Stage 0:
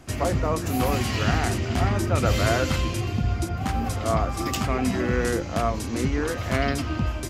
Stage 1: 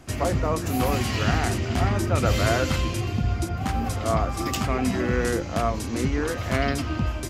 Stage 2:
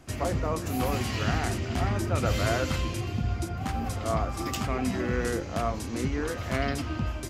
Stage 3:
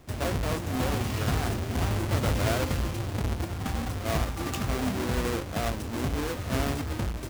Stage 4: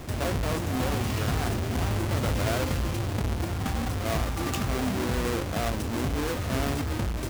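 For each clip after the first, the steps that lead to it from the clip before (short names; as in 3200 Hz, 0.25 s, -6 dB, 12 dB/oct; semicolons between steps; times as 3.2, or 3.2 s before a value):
nothing audible
flange 0.84 Hz, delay 5.8 ms, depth 9.8 ms, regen -90%
half-waves squared off; gain -5 dB
fast leveller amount 50%; gain -2 dB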